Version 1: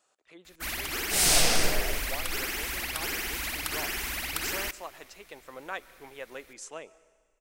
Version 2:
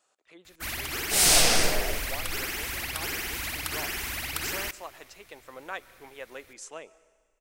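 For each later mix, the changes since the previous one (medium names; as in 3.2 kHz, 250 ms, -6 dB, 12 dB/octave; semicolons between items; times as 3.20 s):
first sound: add peaking EQ 100 Hz +13.5 dB 0.81 oct; second sound +3.0 dB; master: add bass shelf 200 Hz -3.5 dB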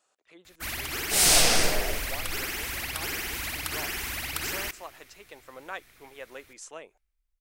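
speech: send off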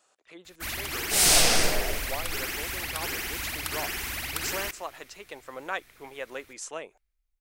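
speech +5.5 dB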